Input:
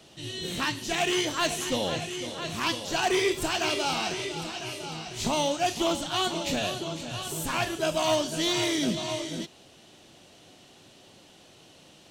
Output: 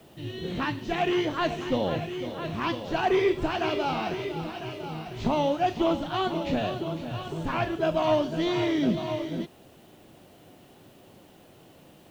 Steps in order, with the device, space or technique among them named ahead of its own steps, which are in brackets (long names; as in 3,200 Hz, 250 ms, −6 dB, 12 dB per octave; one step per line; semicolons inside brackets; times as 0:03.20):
cassette deck with a dirty head (head-to-tape spacing loss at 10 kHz 36 dB; tape wow and flutter 24 cents; white noise bed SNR 36 dB)
level +4.5 dB